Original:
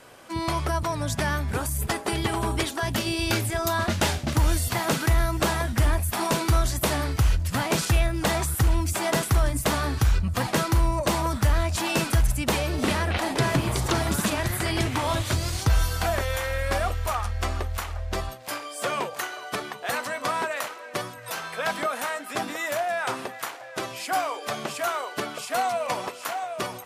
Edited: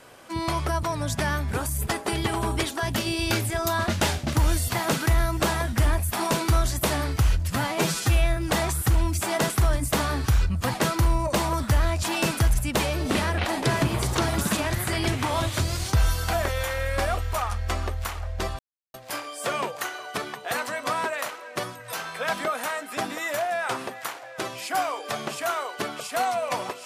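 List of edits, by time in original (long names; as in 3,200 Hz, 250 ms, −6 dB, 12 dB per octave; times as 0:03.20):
0:07.56–0:08.10: time-stretch 1.5×
0:18.32: splice in silence 0.35 s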